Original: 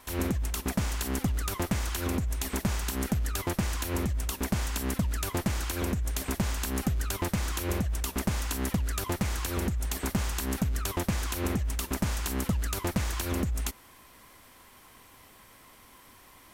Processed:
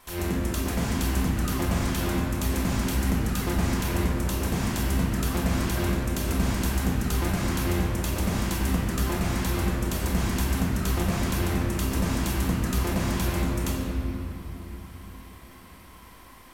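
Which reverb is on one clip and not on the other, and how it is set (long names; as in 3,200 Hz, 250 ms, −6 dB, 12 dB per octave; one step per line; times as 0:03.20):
rectangular room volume 190 cubic metres, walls hard, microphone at 0.86 metres
level −2 dB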